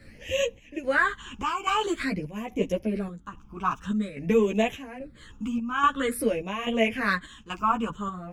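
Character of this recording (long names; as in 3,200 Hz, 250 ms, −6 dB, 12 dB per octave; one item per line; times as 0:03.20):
phaser sweep stages 8, 0.49 Hz, lowest notch 550–1,400 Hz
chopped level 1.2 Hz, depth 60%, duty 70%
a shimmering, thickened sound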